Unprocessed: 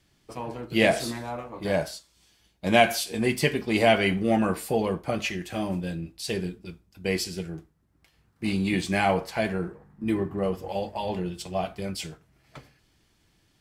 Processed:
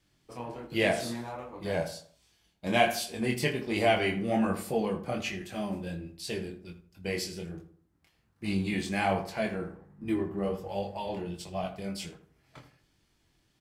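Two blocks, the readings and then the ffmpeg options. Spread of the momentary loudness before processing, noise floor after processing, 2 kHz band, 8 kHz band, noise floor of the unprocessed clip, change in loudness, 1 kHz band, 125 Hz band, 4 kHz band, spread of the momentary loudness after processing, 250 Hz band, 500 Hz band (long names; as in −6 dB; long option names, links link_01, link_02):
14 LU, −71 dBFS, −5.0 dB, −5.0 dB, −67 dBFS, −4.5 dB, −4.5 dB, −5.0 dB, −5.0 dB, 15 LU, −4.5 dB, −5.0 dB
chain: -filter_complex "[0:a]flanger=delay=20:depth=5.2:speed=1.3,asplit=2[link_01][link_02];[link_02]adelay=81,lowpass=frequency=1600:poles=1,volume=-11dB,asplit=2[link_03][link_04];[link_04]adelay=81,lowpass=frequency=1600:poles=1,volume=0.4,asplit=2[link_05][link_06];[link_06]adelay=81,lowpass=frequency=1600:poles=1,volume=0.4,asplit=2[link_07][link_08];[link_08]adelay=81,lowpass=frequency=1600:poles=1,volume=0.4[link_09];[link_01][link_03][link_05][link_07][link_09]amix=inputs=5:normalize=0,volume=-2dB"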